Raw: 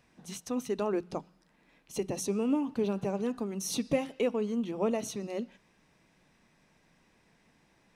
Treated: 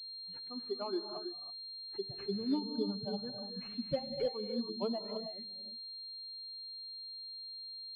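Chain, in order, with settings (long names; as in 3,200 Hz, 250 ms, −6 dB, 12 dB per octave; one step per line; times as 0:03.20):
spectral dynamics exaggerated over time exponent 3
treble cut that deepens with the level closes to 1,500 Hz, closed at −32.5 dBFS
reverb whose tail is shaped and stops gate 350 ms rising, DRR 5.5 dB
switching amplifier with a slow clock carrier 4,200 Hz
level −1.5 dB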